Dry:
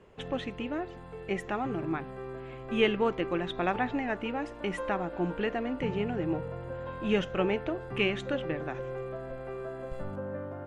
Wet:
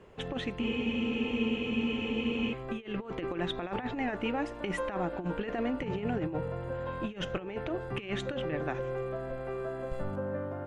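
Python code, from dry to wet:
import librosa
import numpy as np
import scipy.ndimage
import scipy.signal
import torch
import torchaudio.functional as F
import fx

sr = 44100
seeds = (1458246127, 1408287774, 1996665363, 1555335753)

y = fx.over_compress(x, sr, threshold_db=-32.0, ratio=-0.5)
y = fx.spec_freeze(y, sr, seeds[0], at_s=0.63, hold_s=1.89)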